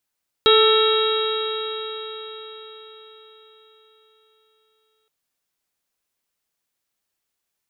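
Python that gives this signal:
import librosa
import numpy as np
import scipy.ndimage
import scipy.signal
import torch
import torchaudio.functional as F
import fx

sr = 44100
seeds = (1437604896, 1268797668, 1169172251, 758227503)

y = fx.additive_stiff(sr, length_s=4.62, hz=435.0, level_db=-13.0, upper_db=(-15, -5.0, -17.5, -18, -13.5, -7.5, -3), decay_s=4.81, stiffness=0.0031)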